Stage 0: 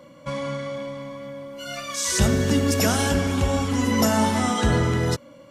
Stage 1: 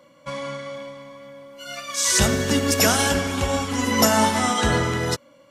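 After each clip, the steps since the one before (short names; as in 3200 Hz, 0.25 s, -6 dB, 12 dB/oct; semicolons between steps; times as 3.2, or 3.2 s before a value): low shelf 410 Hz -8.5 dB; upward expander 1.5:1, over -39 dBFS; gain +7 dB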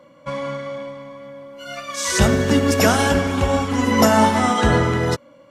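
high shelf 2800 Hz -10.5 dB; gain +5 dB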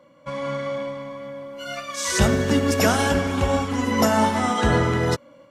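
AGC gain up to 7.5 dB; gain -5 dB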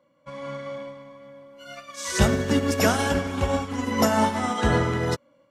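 upward expander 1.5:1, over -36 dBFS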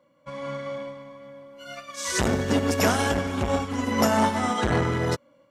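core saturation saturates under 720 Hz; gain +1.5 dB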